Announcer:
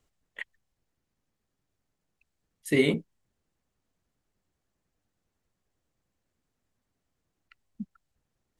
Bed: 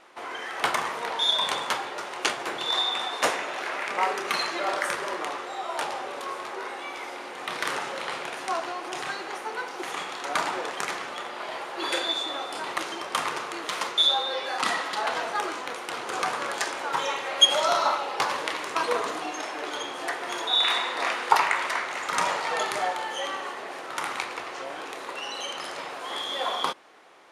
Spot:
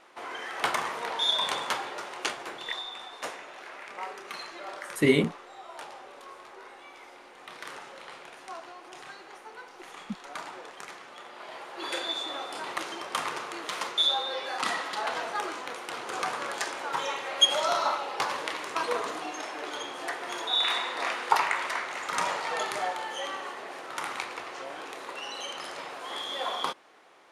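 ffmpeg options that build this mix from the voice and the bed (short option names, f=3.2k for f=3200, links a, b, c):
-filter_complex "[0:a]adelay=2300,volume=1.5dB[a];[1:a]volume=6.5dB,afade=t=out:st=1.89:d=0.94:silence=0.316228,afade=t=in:st=11.03:d=1.31:silence=0.354813[b];[a][b]amix=inputs=2:normalize=0"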